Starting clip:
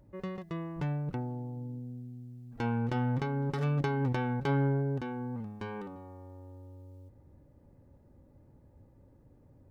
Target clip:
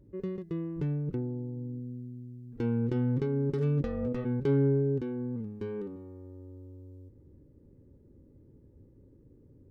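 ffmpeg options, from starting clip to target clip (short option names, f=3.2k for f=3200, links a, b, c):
-filter_complex "[0:a]asplit=3[a][b][c];[a]afade=t=out:st=3.82:d=0.02[d];[b]aeval=exprs='val(0)*sin(2*PI*370*n/s)':c=same,afade=t=in:st=3.82:d=0.02,afade=t=out:st=4.24:d=0.02[e];[c]afade=t=in:st=4.24:d=0.02[f];[d][e][f]amix=inputs=3:normalize=0,lowshelf=f=540:t=q:w=3:g=8.5,volume=-7.5dB"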